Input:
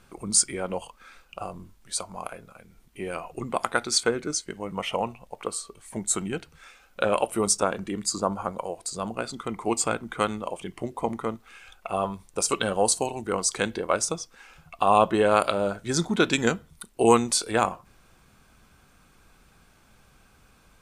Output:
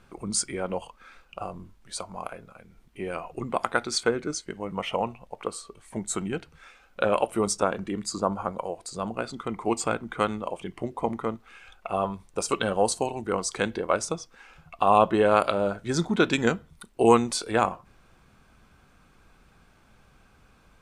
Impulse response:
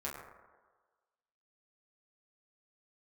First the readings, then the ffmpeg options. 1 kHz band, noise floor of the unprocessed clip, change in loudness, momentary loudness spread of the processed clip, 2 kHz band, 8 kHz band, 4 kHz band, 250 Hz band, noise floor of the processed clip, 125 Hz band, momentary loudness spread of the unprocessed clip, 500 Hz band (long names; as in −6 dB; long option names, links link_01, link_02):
0.0 dB, −59 dBFS, −1.0 dB, 17 LU, −0.5 dB, −6.5 dB, −3.5 dB, +0.5 dB, −59 dBFS, +0.5 dB, 16 LU, +0.5 dB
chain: -af "aemphasis=mode=reproduction:type=cd"